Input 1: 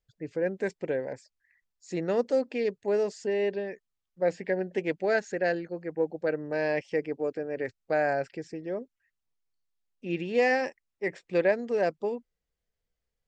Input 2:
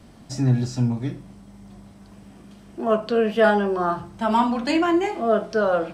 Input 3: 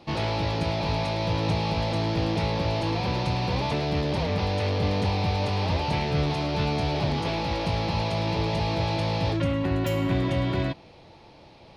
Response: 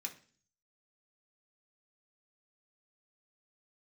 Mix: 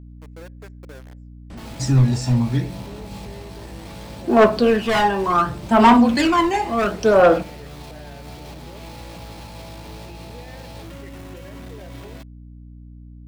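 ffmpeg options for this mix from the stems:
-filter_complex "[0:a]alimiter=limit=0.0708:level=0:latency=1:release=394,volume=0.355,asplit=2[s0][s1];[s1]volume=0.168[s2];[1:a]asoftclip=type=hard:threshold=0.15,aphaser=in_gain=1:out_gain=1:delay=1.1:decay=0.58:speed=0.69:type=sinusoidal,adelay=1500,volume=1.33,asplit=2[s3][s4];[s4]volume=0.501[s5];[2:a]equalizer=f=97:w=1.3:g=-5,alimiter=limit=0.0668:level=0:latency=1:release=12,acrusher=bits=5:mode=log:mix=0:aa=0.000001,adelay=1500,volume=0.398[s6];[s0][s6]amix=inputs=2:normalize=0,aeval=exprs='val(0)*gte(abs(val(0)),0.01)':c=same,alimiter=level_in=2.24:limit=0.0631:level=0:latency=1:release=82,volume=0.447,volume=1[s7];[3:a]atrim=start_sample=2205[s8];[s2][s5]amix=inputs=2:normalize=0[s9];[s9][s8]afir=irnorm=-1:irlink=0[s10];[s3][s7][s10]amix=inputs=3:normalize=0,aeval=exprs='val(0)+0.0112*(sin(2*PI*60*n/s)+sin(2*PI*2*60*n/s)/2+sin(2*PI*3*60*n/s)/3+sin(2*PI*4*60*n/s)/4+sin(2*PI*5*60*n/s)/5)':c=same"

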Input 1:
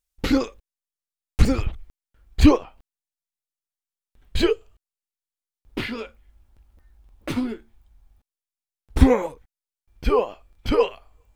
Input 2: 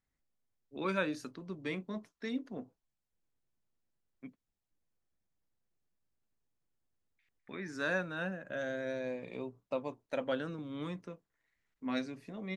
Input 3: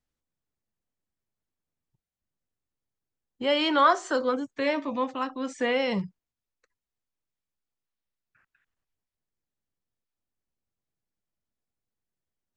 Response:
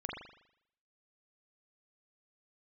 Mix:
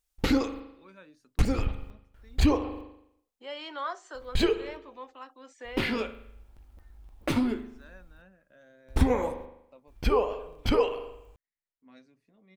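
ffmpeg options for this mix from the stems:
-filter_complex "[0:a]equalizer=f=790:t=o:w=0.77:g=3,volume=0.944,asplit=2[s0][s1];[s1]volume=0.316[s2];[1:a]volume=0.106[s3];[2:a]highpass=410,volume=0.2[s4];[3:a]atrim=start_sample=2205[s5];[s2][s5]afir=irnorm=-1:irlink=0[s6];[s0][s3][s4][s6]amix=inputs=4:normalize=0,acompressor=threshold=0.0708:ratio=2.5"

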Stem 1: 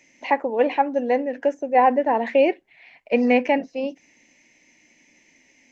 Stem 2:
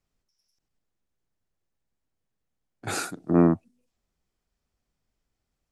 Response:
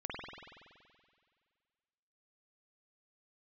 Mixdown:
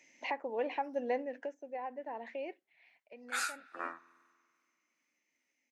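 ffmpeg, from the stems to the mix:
-filter_complex "[0:a]highpass=f=330:p=1,alimiter=limit=0.133:level=0:latency=1:release=418,volume=0.473,afade=t=out:st=1.07:d=0.5:silence=0.375837,afade=t=out:st=2.8:d=0.3:silence=0.354813[s0];[1:a]tremolo=f=2.4:d=0.77,highpass=f=1500:t=q:w=1.9,flanger=delay=7:depth=2.7:regen=-44:speed=0.79:shape=triangular,adelay=450,volume=0.841,asplit=2[s1][s2];[s2]volume=0.0944[s3];[2:a]atrim=start_sample=2205[s4];[s3][s4]afir=irnorm=-1:irlink=0[s5];[s0][s1][s5]amix=inputs=3:normalize=0"

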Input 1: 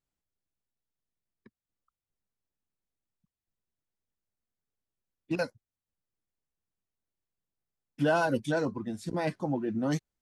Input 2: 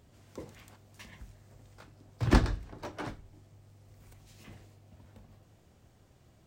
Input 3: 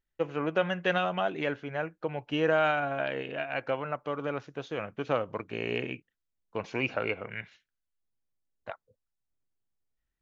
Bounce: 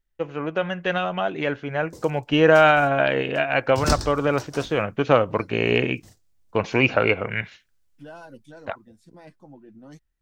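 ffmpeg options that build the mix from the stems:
-filter_complex "[0:a]volume=0.158[s0];[1:a]agate=range=0.0398:threshold=0.00316:ratio=16:detection=peak,highshelf=f=3700:t=q:w=1.5:g=13,adelay=1550,volume=0.944[s1];[2:a]lowshelf=f=65:g=10,dynaudnorm=f=280:g=13:m=3.16,volume=1.26[s2];[s0][s1][s2]amix=inputs=3:normalize=0"

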